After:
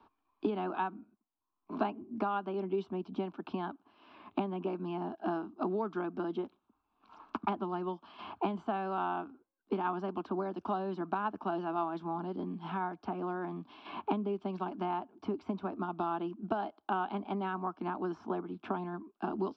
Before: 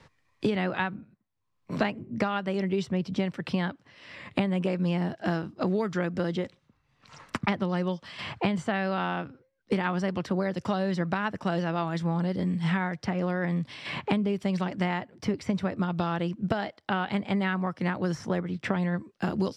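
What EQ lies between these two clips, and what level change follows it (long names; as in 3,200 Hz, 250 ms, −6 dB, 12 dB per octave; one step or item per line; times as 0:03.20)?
high-frequency loss of the air 110 metres
three-way crossover with the lows and the highs turned down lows −13 dB, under 220 Hz, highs −22 dB, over 3,000 Hz
phaser with its sweep stopped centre 520 Hz, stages 6
0.0 dB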